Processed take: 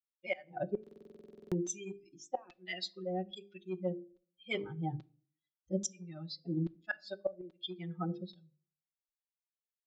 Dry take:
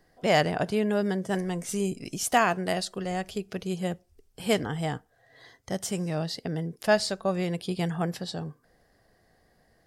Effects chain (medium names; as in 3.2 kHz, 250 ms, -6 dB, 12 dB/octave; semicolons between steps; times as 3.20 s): expander on every frequency bin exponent 3; hum notches 50/100/150/200/250/300/350/400/450/500 Hz; reverse; compression 6:1, threshold -38 dBFS, peak gain reduction 17.5 dB; reverse; LFO band-pass saw down 1.2 Hz 340–3900 Hz; resampled via 16 kHz; inverted gate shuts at -42 dBFS, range -27 dB; comb 5.4 ms, depth 95%; on a send at -18 dB: reverberation RT60 0.45 s, pre-delay 3 ms; on the sum: buffer glitch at 0.82 s, samples 2048, times 14; trim +17.5 dB